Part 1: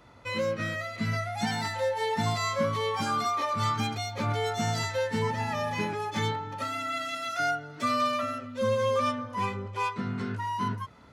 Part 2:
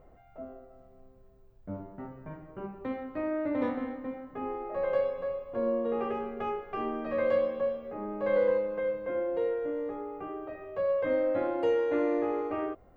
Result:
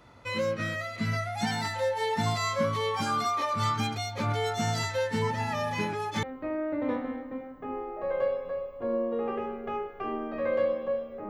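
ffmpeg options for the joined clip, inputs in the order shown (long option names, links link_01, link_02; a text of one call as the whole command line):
ffmpeg -i cue0.wav -i cue1.wav -filter_complex "[0:a]apad=whole_dur=11.29,atrim=end=11.29,atrim=end=6.232[link_01];[1:a]atrim=start=2.958:end=8.02[link_02];[link_01][link_02]acrossfade=duration=0.004:curve1=hsin:curve2=hsin" out.wav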